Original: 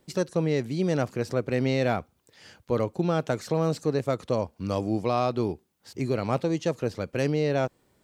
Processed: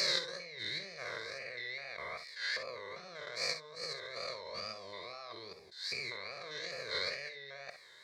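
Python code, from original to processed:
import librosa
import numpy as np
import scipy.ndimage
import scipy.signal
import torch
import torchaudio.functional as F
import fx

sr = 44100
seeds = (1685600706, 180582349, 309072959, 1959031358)

y = fx.spec_steps(x, sr, hold_ms=200)
y = y + 0.98 * np.pad(y, (int(1.8 * sr / 1000.0), 0))[:len(y)]
y = fx.over_compress(y, sr, threshold_db=-36.0, ratio=-1.0)
y = fx.double_bandpass(y, sr, hz=2900.0, octaves=1.0)
y = fx.wow_flutter(y, sr, seeds[0], rate_hz=2.1, depth_cents=130.0)
y = fx.room_early_taps(y, sr, ms=(51, 64), db=(-12.5, -12.0))
y = fx.attack_slew(y, sr, db_per_s=130.0)
y = y * 10.0 ** (14.5 / 20.0)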